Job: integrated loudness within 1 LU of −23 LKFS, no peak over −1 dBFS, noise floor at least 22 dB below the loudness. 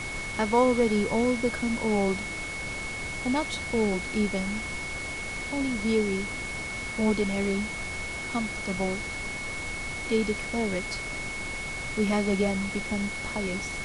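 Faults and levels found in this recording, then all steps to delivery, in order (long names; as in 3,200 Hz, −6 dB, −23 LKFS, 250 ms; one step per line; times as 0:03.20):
interfering tone 2,200 Hz; level of the tone −34 dBFS; background noise floor −35 dBFS; target noise floor −51 dBFS; integrated loudness −28.5 LKFS; sample peak −10.5 dBFS; target loudness −23.0 LKFS
→ notch filter 2,200 Hz, Q 30
noise reduction from a noise print 16 dB
level +5.5 dB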